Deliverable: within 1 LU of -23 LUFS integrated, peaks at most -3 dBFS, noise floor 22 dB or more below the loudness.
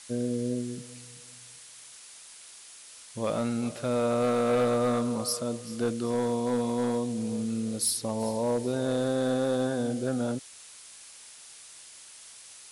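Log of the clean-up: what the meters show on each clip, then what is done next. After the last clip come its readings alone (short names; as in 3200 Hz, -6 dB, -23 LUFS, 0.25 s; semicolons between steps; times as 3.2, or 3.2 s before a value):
clipped 1.0%; flat tops at -20.0 dBFS; noise floor -49 dBFS; noise floor target -51 dBFS; loudness -29.0 LUFS; peak -20.0 dBFS; loudness target -23.0 LUFS
-> clip repair -20 dBFS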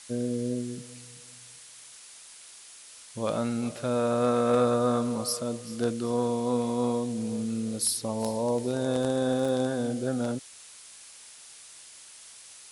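clipped 0.0%; noise floor -49 dBFS; noise floor target -51 dBFS
-> denoiser 6 dB, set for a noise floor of -49 dBFS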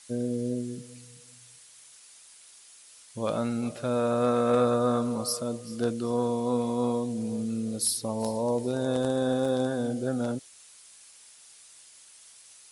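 noise floor -53 dBFS; loudness -28.5 LUFS; peak -12.0 dBFS; loudness target -23.0 LUFS
-> gain +5.5 dB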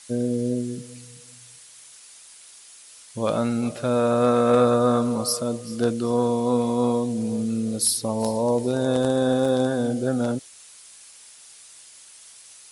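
loudness -23.0 LUFS; peak -6.5 dBFS; noise floor -48 dBFS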